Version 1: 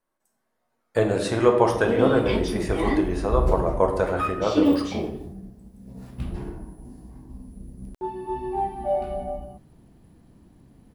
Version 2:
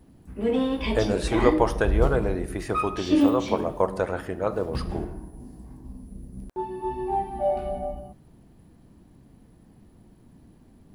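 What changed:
speech: send -9.5 dB; background: entry -1.45 s

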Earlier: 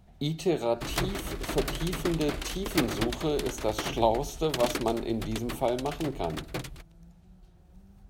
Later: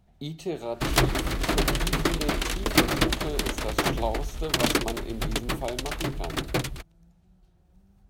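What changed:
speech -5.0 dB; background +8.5 dB

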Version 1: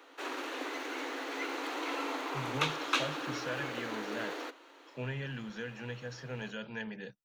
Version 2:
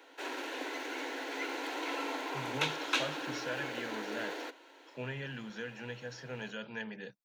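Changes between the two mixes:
background: add Butterworth band-stop 1200 Hz, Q 5.7; master: add low shelf 100 Hz -11.5 dB

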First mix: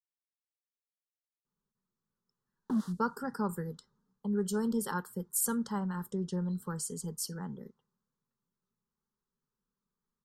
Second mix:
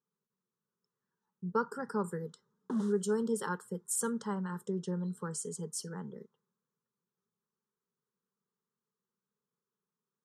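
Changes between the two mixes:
speech: entry -1.45 s; master: add speaker cabinet 150–9700 Hz, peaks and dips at 260 Hz -5 dB, 440 Hz +5 dB, 740 Hz -5 dB, 4600 Hz -7 dB

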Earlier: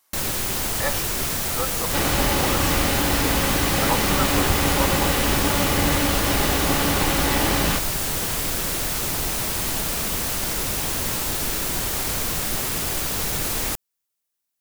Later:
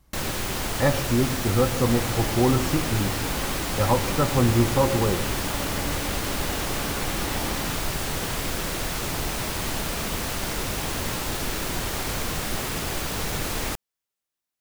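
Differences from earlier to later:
speech: remove HPF 790 Hz 12 dB/oct; second sound -11.5 dB; master: add high shelf 6100 Hz -9.5 dB

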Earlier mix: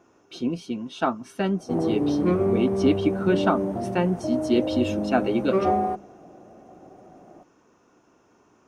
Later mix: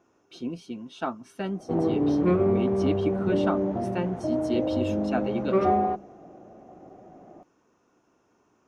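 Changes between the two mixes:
speech -6.5 dB; background: add LPF 4300 Hz 24 dB/oct

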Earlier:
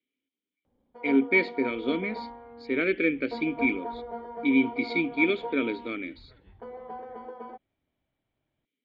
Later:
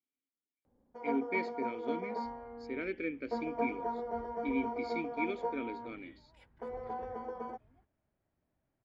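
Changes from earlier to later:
speech -11.5 dB; second sound: entry +0.55 s; master: add resonant high shelf 4700 Hz +8 dB, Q 3

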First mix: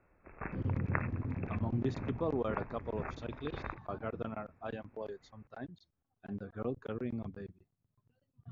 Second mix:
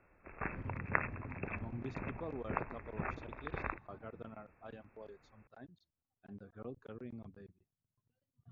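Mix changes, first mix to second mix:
speech -9.5 dB; background: remove air absorption 430 m

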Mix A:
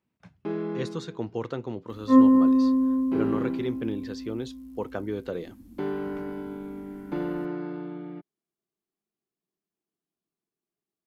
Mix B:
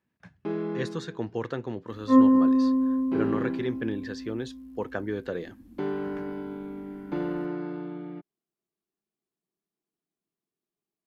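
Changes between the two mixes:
speech: add bell 1700 Hz +11.5 dB 0.23 oct; second sound: add tone controls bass -3 dB, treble -7 dB

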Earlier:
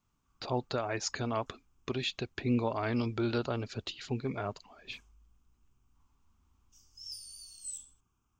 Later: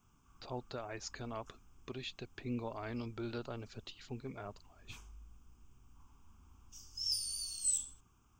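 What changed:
speech -10.0 dB; background +8.5 dB

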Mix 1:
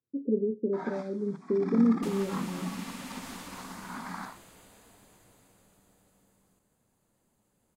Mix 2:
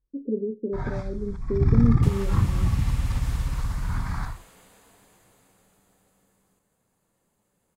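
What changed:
first sound: remove rippled Chebyshev high-pass 180 Hz, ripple 3 dB; reverb: on, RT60 0.45 s

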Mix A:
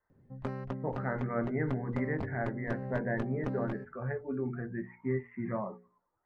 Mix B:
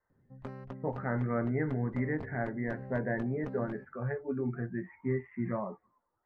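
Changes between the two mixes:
speech: remove notches 60/120/180/240/300/360/420/480/540 Hz; background -6.0 dB

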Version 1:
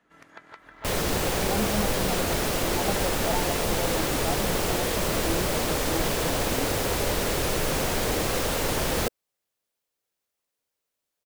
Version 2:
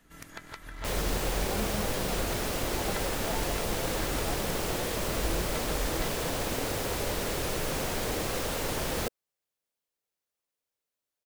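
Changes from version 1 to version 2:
speech -8.0 dB; first sound: remove band-pass 850 Hz, Q 0.55; second sound -5.5 dB

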